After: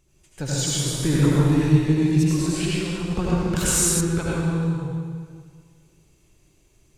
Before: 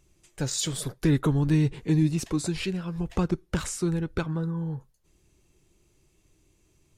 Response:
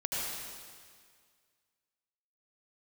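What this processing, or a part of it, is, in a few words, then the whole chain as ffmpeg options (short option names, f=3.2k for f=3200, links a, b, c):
stairwell: -filter_complex "[1:a]atrim=start_sample=2205[a];[0:a][a]afir=irnorm=-1:irlink=0,asettb=1/sr,asplit=3[b][c][d];[b]atrim=end=3.564[e];[c]atrim=start=3.56:end=4.01,asetpts=PTS-STARTPTS,afade=t=in:d=0.004:c=qsin,afade=t=out:st=0.446:d=0.004:c=qsin,aemphasis=mode=production:type=75kf[f];[d]atrim=start=4.006[g];[e][f]acrossfade=d=0.004:c1=hsin:c2=qsin[h];[h][g]acrossfade=d=0.004:c1=qsin:c2=hsin"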